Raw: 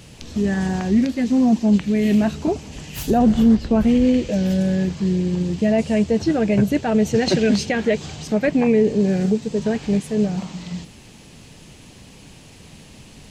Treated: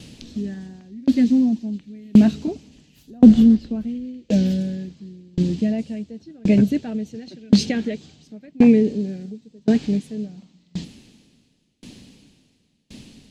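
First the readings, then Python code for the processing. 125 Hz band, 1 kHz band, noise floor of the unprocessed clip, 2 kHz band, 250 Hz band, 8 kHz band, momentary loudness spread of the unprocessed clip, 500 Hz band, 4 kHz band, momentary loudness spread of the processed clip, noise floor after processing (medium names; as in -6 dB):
-2.5 dB, -12.5 dB, -45 dBFS, -9.0 dB, 0.0 dB, no reading, 9 LU, -7.5 dB, -3.5 dB, 20 LU, -63 dBFS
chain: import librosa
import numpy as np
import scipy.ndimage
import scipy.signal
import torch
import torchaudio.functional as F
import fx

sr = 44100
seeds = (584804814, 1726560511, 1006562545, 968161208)

y = fx.graphic_eq(x, sr, hz=(250, 1000, 4000), db=(11, -5, 7))
y = fx.tremolo_decay(y, sr, direction='decaying', hz=0.93, depth_db=33)
y = y * librosa.db_to_amplitude(-1.0)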